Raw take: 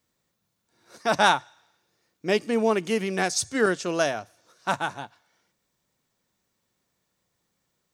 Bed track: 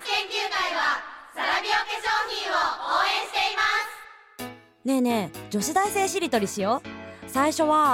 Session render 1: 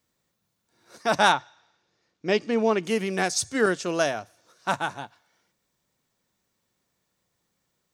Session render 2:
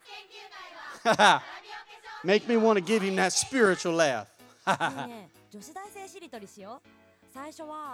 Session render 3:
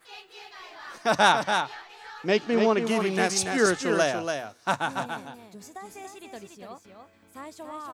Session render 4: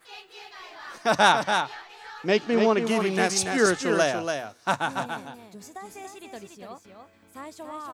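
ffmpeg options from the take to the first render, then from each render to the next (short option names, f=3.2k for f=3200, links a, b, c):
-filter_complex "[0:a]asettb=1/sr,asplit=3[a][b][c];[a]atrim=end=1.324[d];[b]atrim=start=1.32:end=2.83,asetpts=PTS-STARTPTS,afade=t=in:d=0.004:c=qsin,afade=t=out:st=1.506:d=0.004:c=qsin,lowpass=f=6.4k:w=0.5412,lowpass=f=6.4k:w=1.3066[e];[c]atrim=start=2.826[f];[d][e]acrossfade=d=0.004:c1=hsin:c2=qsin[g];[g][f]acrossfade=d=0.004:c1=qsin:c2=hsin"
-filter_complex "[1:a]volume=-19.5dB[a];[0:a][a]amix=inputs=2:normalize=0"
-af "aecho=1:1:285:0.501"
-af "volume=1dB"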